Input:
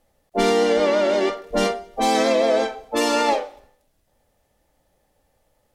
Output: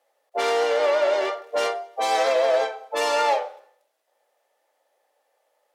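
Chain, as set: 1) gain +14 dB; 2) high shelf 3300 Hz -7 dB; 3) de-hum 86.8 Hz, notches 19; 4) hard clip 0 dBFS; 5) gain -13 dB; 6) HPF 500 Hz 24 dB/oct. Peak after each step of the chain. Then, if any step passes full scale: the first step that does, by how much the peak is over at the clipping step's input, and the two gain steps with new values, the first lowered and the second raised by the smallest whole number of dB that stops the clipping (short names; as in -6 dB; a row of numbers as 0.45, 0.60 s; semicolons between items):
+7.5, +7.0, +6.0, 0.0, -13.0, -10.0 dBFS; step 1, 6.0 dB; step 1 +8 dB, step 5 -7 dB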